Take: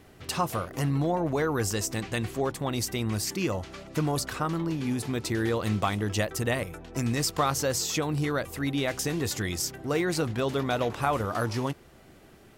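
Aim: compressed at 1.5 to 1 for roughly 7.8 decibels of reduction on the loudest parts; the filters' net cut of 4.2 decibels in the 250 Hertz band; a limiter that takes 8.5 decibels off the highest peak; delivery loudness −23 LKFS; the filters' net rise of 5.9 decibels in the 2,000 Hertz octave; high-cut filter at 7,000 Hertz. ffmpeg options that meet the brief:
ffmpeg -i in.wav -af "lowpass=7000,equalizer=frequency=250:width_type=o:gain=-6,equalizer=frequency=2000:width_type=o:gain=7.5,acompressor=threshold=-42dB:ratio=1.5,volume=13dB,alimiter=limit=-11.5dB:level=0:latency=1" out.wav

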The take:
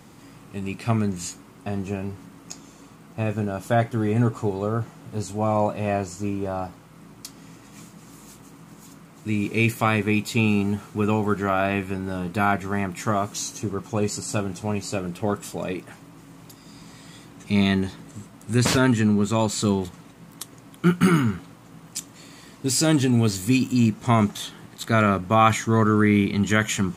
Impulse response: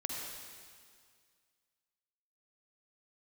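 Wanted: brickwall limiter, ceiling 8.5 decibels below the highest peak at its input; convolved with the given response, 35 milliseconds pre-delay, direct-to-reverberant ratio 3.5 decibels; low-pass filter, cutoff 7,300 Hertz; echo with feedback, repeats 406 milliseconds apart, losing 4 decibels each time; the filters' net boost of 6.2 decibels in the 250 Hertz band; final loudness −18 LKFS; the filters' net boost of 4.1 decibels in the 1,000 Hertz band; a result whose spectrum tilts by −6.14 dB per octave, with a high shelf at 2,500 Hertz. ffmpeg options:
-filter_complex "[0:a]lowpass=7300,equalizer=frequency=250:width_type=o:gain=7.5,equalizer=frequency=1000:width_type=o:gain=6.5,highshelf=frequency=2500:gain=-7,alimiter=limit=-9dB:level=0:latency=1,aecho=1:1:406|812|1218|1624|2030|2436|2842|3248|3654:0.631|0.398|0.25|0.158|0.0994|0.0626|0.0394|0.0249|0.0157,asplit=2[link_01][link_02];[1:a]atrim=start_sample=2205,adelay=35[link_03];[link_02][link_03]afir=irnorm=-1:irlink=0,volume=-5.5dB[link_04];[link_01][link_04]amix=inputs=2:normalize=0,volume=0.5dB"

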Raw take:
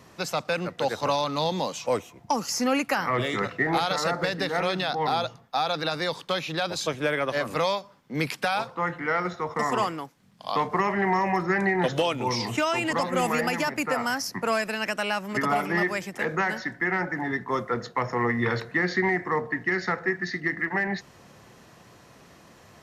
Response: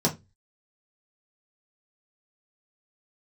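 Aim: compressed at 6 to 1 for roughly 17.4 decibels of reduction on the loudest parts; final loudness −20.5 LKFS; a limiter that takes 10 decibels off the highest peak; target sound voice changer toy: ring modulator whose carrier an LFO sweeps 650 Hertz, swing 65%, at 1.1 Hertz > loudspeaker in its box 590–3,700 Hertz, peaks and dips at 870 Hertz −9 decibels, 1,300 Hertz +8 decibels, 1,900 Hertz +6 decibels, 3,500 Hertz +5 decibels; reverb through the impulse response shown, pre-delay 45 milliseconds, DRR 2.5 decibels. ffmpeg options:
-filter_complex "[0:a]acompressor=threshold=-40dB:ratio=6,alimiter=level_in=9.5dB:limit=-24dB:level=0:latency=1,volume=-9.5dB,asplit=2[link_01][link_02];[1:a]atrim=start_sample=2205,adelay=45[link_03];[link_02][link_03]afir=irnorm=-1:irlink=0,volume=-14dB[link_04];[link_01][link_04]amix=inputs=2:normalize=0,aeval=exprs='val(0)*sin(2*PI*650*n/s+650*0.65/1.1*sin(2*PI*1.1*n/s))':channel_layout=same,highpass=590,equalizer=frequency=870:width_type=q:width=4:gain=-9,equalizer=frequency=1300:width_type=q:width=4:gain=8,equalizer=frequency=1900:width_type=q:width=4:gain=6,equalizer=frequency=3500:width_type=q:width=4:gain=5,lowpass=frequency=3700:width=0.5412,lowpass=frequency=3700:width=1.3066,volume=20.5dB"

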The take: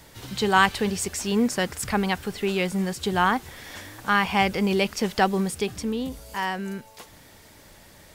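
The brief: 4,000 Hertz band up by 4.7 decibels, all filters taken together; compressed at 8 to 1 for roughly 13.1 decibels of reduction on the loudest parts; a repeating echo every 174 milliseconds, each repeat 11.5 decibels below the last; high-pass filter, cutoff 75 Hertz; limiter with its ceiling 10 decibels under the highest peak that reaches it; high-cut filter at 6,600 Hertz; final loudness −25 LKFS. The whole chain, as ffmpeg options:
ffmpeg -i in.wav -af "highpass=75,lowpass=6600,equalizer=frequency=4000:width_type=o:gain=7,acompressor=threshold=-27dB:ratio=8,alimiter=limit=-24dB:level=0:latency=1,aecho=1:1:174|348|522:0.266|0.0718|0.0194,volume=9dB" out.wav

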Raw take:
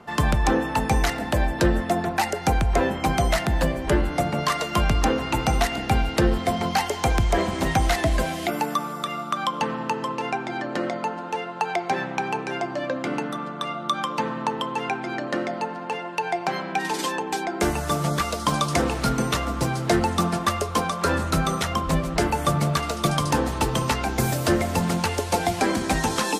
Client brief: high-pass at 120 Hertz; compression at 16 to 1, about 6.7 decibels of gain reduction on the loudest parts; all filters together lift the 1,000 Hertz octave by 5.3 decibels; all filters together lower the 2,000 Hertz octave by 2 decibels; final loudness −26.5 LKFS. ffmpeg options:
ffmpeg -i in.wav -af "highpass=120,equalizer=frequency=1000:width_type=o:gain=8,equalizer=frequency=2000:width_type=o:gain=-5.5,acompressor=threshold=-21dB:ratio=16" out.wav

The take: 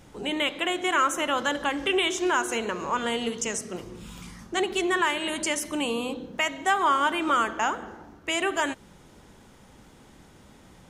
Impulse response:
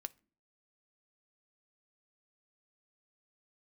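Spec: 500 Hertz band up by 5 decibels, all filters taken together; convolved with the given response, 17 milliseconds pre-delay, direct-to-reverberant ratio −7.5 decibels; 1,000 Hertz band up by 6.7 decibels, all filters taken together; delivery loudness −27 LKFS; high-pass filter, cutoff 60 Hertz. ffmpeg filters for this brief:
-filter_complex "[0:a]highpass=60,equalizer=frequency=500:width_type=o:gain=5,equalizer=frequency=1000:width_type=o:gain=7,asplit=2[link_01][link_02];[1:a]atrim=start_sample=2205,adelay=17[link_03];[link_02][link_03]afir=irnorm=-1:irlink=0,volume=11dB[link_04];[link_01][link_04]amix=inputs=2:normalize=0,volume=-13.5dB"

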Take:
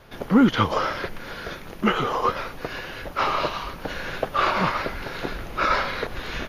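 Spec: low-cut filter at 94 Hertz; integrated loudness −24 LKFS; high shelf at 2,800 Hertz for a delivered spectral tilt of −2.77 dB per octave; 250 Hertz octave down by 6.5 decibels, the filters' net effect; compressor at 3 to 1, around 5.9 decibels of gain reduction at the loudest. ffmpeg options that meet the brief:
ffmpeg -i in.wav -af "highpass=94,equalizer=frequency=250:width_type=o:gain=-7.5,highshelf=frequency=2800:gain=-5.5,acompressor=threshold=-26dB:ratio=3,volume=7dB" out.wav

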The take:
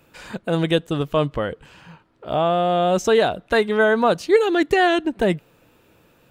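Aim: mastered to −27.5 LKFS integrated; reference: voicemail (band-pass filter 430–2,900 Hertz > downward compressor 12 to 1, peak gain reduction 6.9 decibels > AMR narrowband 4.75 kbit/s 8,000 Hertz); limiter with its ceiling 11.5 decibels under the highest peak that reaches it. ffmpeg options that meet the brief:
ffmpeg -i in.wav -af "alimiter=limit=-16dB:level=0:latency=1,highpass=430,lowpass=2900,acompressor=threshold=-26dB:ratio=12,volume=5.5dB" -ar 8000 -c:a libopencore_amrnb -b:a 4750 out.amr

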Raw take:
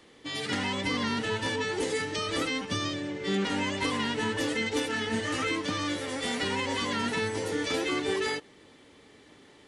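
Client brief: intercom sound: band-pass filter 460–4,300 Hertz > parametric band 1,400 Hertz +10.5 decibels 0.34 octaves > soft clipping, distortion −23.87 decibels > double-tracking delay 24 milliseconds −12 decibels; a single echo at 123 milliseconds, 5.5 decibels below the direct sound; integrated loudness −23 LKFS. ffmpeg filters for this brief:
ffmpeg -i in.wav -filter_complex "[0:a]highpass=460,lowpass=4300,equalizer=frequency=1400:width_type=o:width=0.34:gain=10.5,aecho=1:1:123:0.531,asoftclip=threshold=-19dB,asplit=2[link_01][link_02];[link_02]adelay=24,volume=-12dB[link_03];[link_01][link_03]amix=inputs=2:normalize=0,volume=6.5dB" out.wav

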